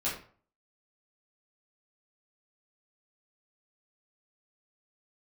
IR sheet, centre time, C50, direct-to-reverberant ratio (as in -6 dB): 35 ms, 5.0 dB, -9.0 dB